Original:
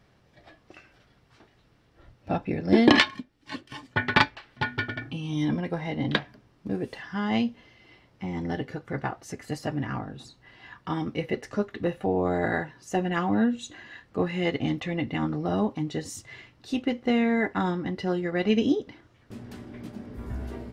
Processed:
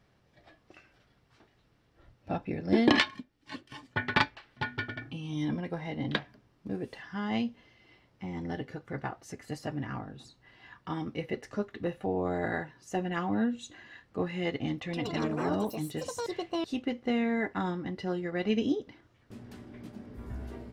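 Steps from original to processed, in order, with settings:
0:14.78–0:17.23: delay with pitch and tempo change per echo 129 ms, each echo +6 semitones, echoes 2
level −5.5 dB

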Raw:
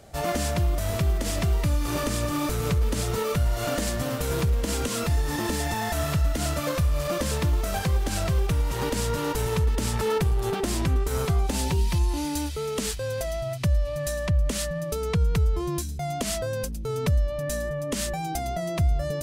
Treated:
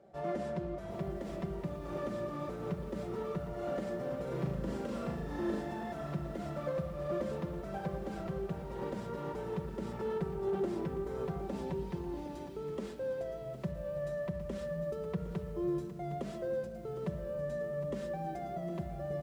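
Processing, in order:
resonant band-pass 420 Hz, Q 0.87
comb filter 5.2 ms, depth 46%
0:04.23–0:05.61: flutter between parallel walls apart 6.5 metres, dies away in 0.62 s
rectangular room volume 2,400 cubic metres, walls mixed, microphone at 0.84 metres
feedback echo at a low word length 761 ms, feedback 35%, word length 8 bits, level −12.5 dB
level −7.5 dB

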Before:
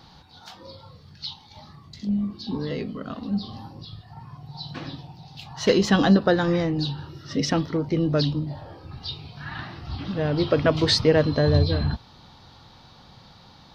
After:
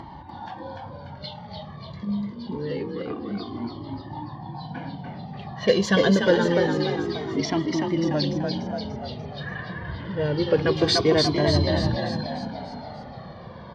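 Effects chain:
low-pass that shuts in the quiet parts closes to 1,300 Hz, open at −15.5 dBFS
upward compression, threshold −27 dBFS
notch comb filter 1,300 Hz
echo with shifted repeats 293 ms, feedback 54%, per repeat +33 Hz, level −4 dB
flanger whose copies keep moving one way falling 0.26 Hz
level +4.5 dB

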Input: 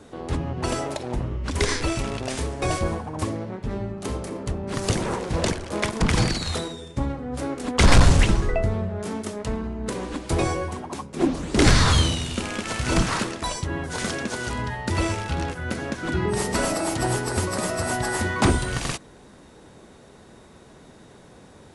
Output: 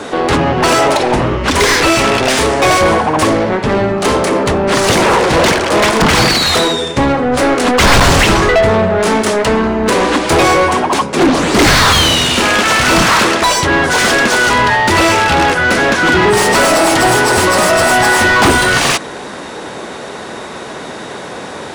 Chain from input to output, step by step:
mid-hump overdrive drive 29 dB, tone 3,700 Hz, clips at −7 dBFS
level +5.5 dB

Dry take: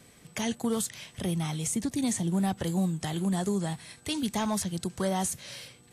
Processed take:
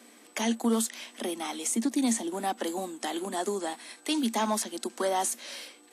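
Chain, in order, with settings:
mains hum 60 Hz, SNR 26 dB
Chebyshev high-pass with heavy ripple 220 Hz, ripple 3 dB
level +4.5 dB

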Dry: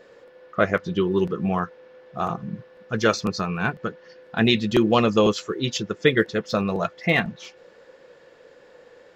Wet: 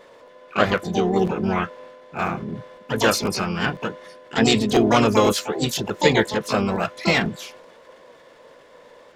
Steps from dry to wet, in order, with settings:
transient designer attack +1 dB, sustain +6 dB
pitch-shifted copies added −12 semitones −18 dB, +3 semitones −5 dB, +12 semitones −6 dB
level −1 dB

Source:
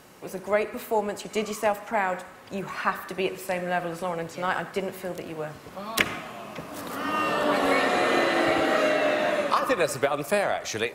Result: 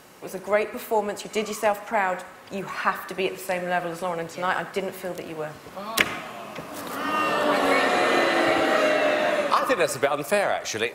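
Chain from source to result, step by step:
low-shelf EQ 250 Hz −4.5 dB
level +2.5 dB

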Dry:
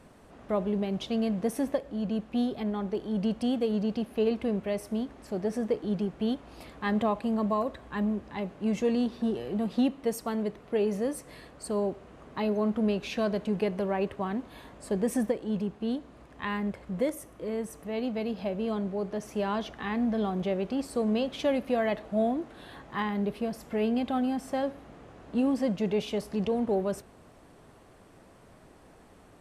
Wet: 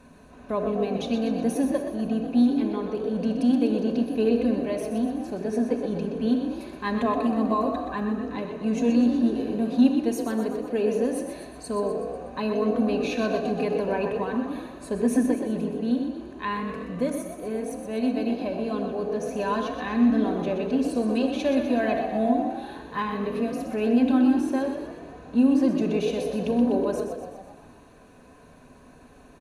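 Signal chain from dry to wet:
EQ curve with evenly spaced ripples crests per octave 1.5, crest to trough 9 dB
echo with shifted repeats 124 ms, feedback 56%, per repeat +42 Hz, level −8 dB
rectangular room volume 3,900 cubic metres, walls furnished, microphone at 2 metres

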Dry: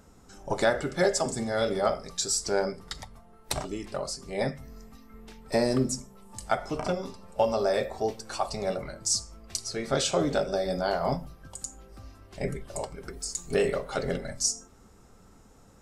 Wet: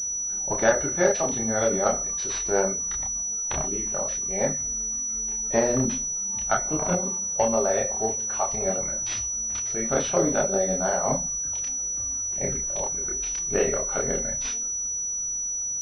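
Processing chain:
harmonic generator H 3 −20 dB, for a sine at −12 dBFS
multi-voice chorus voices 6, 1.2 Hz, delay 29 ms, depth 3 ms
switching amplifier with a slow clock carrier 5,900 Hz
level +7.5 dB

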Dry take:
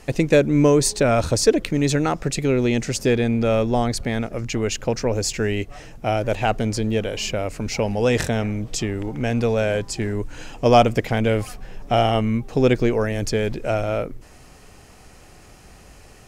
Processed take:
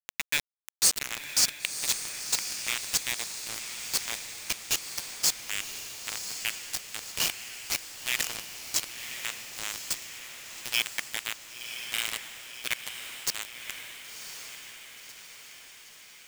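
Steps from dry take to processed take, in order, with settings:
Butterworth high-pass 1,800 Hz 48 dB per octave
bit reduction 4 bits
feedback delay with all-pass diffusion 1,045 ms, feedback 58%, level −7.5 dB

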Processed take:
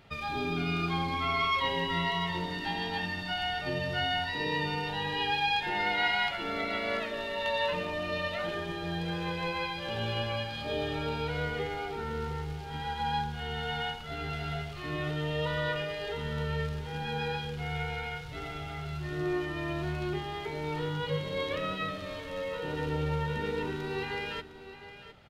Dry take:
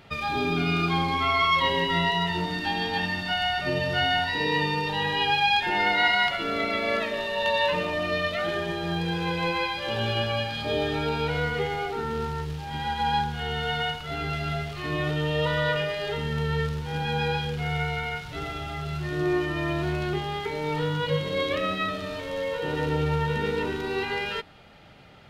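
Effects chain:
low-shelf EQ 61 Hz +6 dB
on a send: single-tap delay 709 ms −13 dB
on the sum: level −6.5 dB

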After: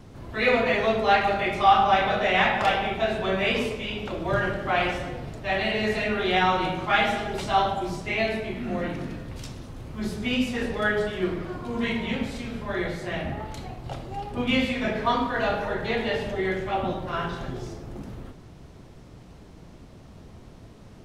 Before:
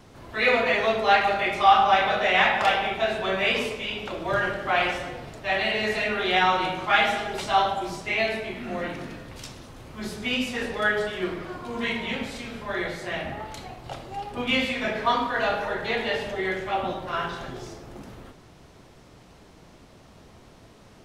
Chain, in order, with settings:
low-shelf EQ 350 Hz +10 dB
level −2.5 dB

